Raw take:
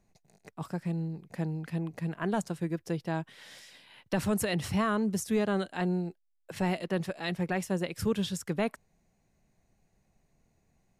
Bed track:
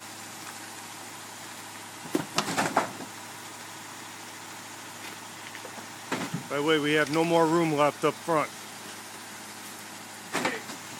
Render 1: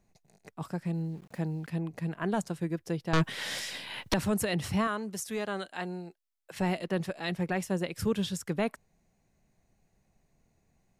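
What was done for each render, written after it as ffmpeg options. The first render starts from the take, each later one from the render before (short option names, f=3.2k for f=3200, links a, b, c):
-filter_complex "[0:a]asettb=1/sr,asplit=3[a][b][c];[a]atrim=end=0.944[d];[b]atrim=start=0.94:end=1.68,asetpts=PTS-STARTPTS,afade=t=in:d=0.004:c=qsin,afade=t=out:st=0.736:d=0.004:c=qsin,aeval=exprs='val(0)*gte(abs(val(0)),0.00168)':c=same[e];[c]atrim=start=1.676[f];[d][e]acrossfade=d=0.004:c1=hsin:c2=qsin[g];[g][f]acrossfade=d=0.004:c1=qsin:c2=hsin,asettb=1/sr,asplit=3[h][i][j];[h]atrim=end=3.134[k];[i]atrim=start=3.13:end=4.14,asetpts=PTS-STARTPTS,afade=t=in:d=0.004:c=qsin,afade=t=out:st=1.006:d=0.004:c=qsin,aeval=exprs='0.112*sin(PI/2*3.55*val(0)/0.112)':c=same[l];[j]atrim=start=4.136[m];[k][l]acrossfade=d=0.004:c1=hsin:c2=qsin[n];[n][m]acrossfade=d=0.004:c1=qsin:c2=hsin,asettb=1/sr,asplit=3[o][p][q];[o]atrim=end=4.874[r];[p]atrim=start=4.87:end=6.59,asetpts=PTS-STARTPTS,afade=t=in:d=0.004:c=qsin,afade=t=out:st=1.716:d=0.004:c=qsin,lowshelf=f=390:g=-12[s];[q]atrim=start=6.586[t];[r][s]acrossfade=d=0.004:c1=hsin:c2=qsin[u];[u][t]acrossfade=d=0.004:c1=qsin:c2=hsin"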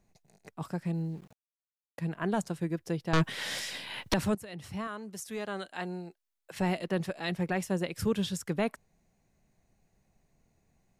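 -filter_complex "[0:a]asplit=4[a][b][c][d];[a]atrim=end=1.33,asetpts=PTS-STARTPTS,afade=t=out:st=1.326:d=0.004:c=hsin[e];[b]atrim=start=1.33:end=1.98,asetpts=PTS-STARTPTS,volume=0[f];[c]atrim=start=1.98:end=4.35,asetpts=PTS-STARTPTS,afade=t=in:d=0.004:c=hsin,afade=t=out:st=2.366:d=0.004:c=hsin:silence=0.133352[g];[d]atrim=start=4.35,asetpts=PTS-STARTPTS,afade=t=in:d=1.59:silence=0.133352[h];[e][f][g][h]concat=n=4:v=0:a=1"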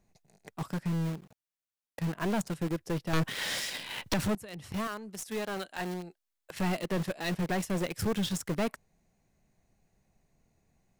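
-filter_complex "[0:a]aeval=exprs='(tanh(25.1*val(0)+0.25)-tanh(0.25))/25.1':c=same,asplit=2[a][b];[b]acrusher=bits=5:mix=0:aa=0.000001,volume=-5.5dB[c];[a][c]amix=inputs=2:normalize=0"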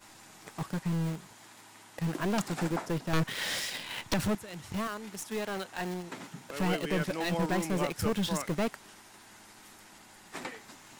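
-filter_complex "[1:a]volume=-12dB[a];[0:a][a]amix=inputs=2:normalize=0"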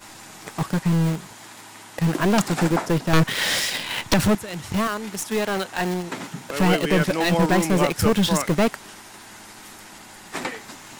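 -af "volume=11dB"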